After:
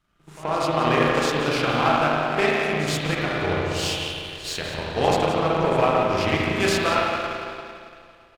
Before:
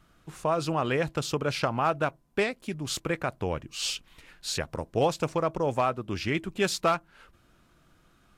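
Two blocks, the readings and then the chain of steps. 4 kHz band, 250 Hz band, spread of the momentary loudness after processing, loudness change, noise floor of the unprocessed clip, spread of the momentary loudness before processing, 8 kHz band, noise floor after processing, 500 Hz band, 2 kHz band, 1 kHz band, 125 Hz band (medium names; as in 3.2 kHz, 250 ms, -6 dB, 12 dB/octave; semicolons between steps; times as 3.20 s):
+7.0 dB, +7.0 dB, 10 LU, +7.0 dB, -63 dBFS, 6 LU, +2.5 dB, -52 dBFS, +6.5 dB, +9.5 dB, +7.5 dB, +6.0 dB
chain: peaking EQ 3.2 kHz +4 dB 2.5 oct; in parallel at -2 dB: peak limiter -23 dBFS, peak gain reduction 10.5 dB; on the sum: pre-echo 79 ms -12.5 dB; spring tank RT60 3.3 s, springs 33/38 ms, chirp 70 ms, DRR -6 dB; power-law waveshaper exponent 1.4; on a send: delay 177 ms -12 dB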